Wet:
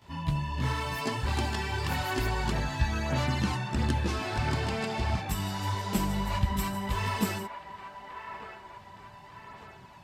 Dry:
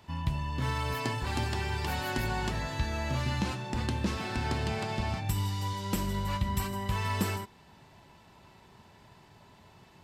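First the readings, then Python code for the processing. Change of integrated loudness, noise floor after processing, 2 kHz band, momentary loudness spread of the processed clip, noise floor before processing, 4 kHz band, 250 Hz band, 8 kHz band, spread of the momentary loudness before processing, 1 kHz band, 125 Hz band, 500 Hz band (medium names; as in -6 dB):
+1.5 dB, -50 dBFS, +2.0 dB, 18 LU, -58 dBFS, +1.5 dB, +2.5 dB, +1.5 dB, 2 LU, +2.5 dB, +1.5 dB, +2.0 dB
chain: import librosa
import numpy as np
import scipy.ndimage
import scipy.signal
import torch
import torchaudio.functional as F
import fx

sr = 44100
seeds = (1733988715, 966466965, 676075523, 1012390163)

y = fx.chorus_voices(x, sr, voices=2, hz=0.78, base_ms=17, depth_ms=3.2, mix_pct=70)
y = fx.echo_wet_bandpass(y, sr, ms=1197, feedback_pct=47, hz=1100.0, wet_db=-7)
y = F.gain(torch.from_numpy(y), 4.0).numpy()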